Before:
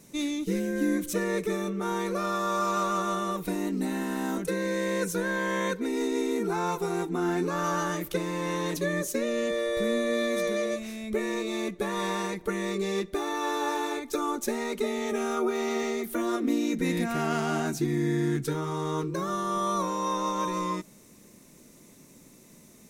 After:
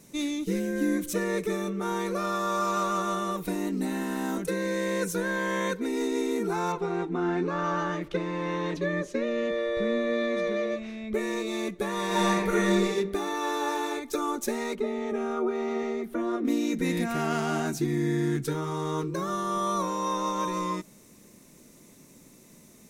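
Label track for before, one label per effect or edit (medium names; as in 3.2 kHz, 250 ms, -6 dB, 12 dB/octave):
6.720000	11.140000	low-pass 3.3 kHz
12.070000	12.830000	reverb throw, RT60 0.93 s, DRR -5.5 dB
14.750000	16.450000	low-pass 1.3 kHz 6 dB/octave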